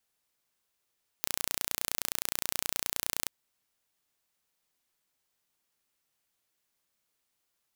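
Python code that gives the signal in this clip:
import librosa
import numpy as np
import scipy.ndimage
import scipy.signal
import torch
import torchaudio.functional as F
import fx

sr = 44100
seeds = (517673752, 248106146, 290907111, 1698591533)

y = 10.0 ** (-3.0 / 20.0) * (np.mod(np.arange(round(2.06 * sr)), round(sr / 29.6)) == 0)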